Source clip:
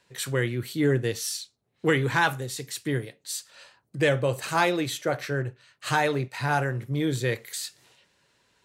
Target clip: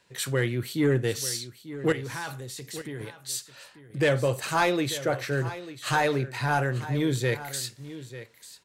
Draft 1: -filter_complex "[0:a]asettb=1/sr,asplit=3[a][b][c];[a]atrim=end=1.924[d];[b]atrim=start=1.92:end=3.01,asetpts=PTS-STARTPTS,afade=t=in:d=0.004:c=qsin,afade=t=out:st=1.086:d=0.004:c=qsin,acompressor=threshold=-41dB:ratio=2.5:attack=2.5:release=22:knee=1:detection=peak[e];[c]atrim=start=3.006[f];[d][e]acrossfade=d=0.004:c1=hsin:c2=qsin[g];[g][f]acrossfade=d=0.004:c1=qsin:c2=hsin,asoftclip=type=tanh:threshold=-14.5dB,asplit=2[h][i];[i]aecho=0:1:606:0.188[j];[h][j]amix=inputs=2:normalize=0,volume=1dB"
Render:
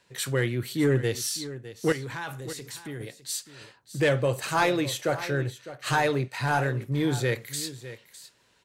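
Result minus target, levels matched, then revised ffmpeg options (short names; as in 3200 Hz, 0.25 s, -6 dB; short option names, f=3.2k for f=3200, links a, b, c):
echo 0.287 s early
-filter_complex "[0:a]asettb=1/sr,asplit=3[a][b][c];[a]atrim=end=1.924[d];[b]atrim=start=1.92:end=3.01,asetpts=PTS-STARTPTS,afade=t=in:d=0.004:c=qsin,afade=t=out:st=1.086:d=0.004:c=qsin,acompressor=threshold=-41dB:ratio=2.5:attack=2.5:release=22:knee=1:detection=peak[e];[c]atrim=start=3.006[f];[d][e]acrossfade=d=0.004:c1=hsin:c2=qsin[g];[g][f]acrossfade=d=0.004:c1=qsin:c2=hsin,asoftclip=type=tanh:threshold=-14.5dB,asplit=2[h][i];[i]aecho=0:1:893:0.188[j];[h][j]amix=inputs=2:normalize=0,volume=1dB"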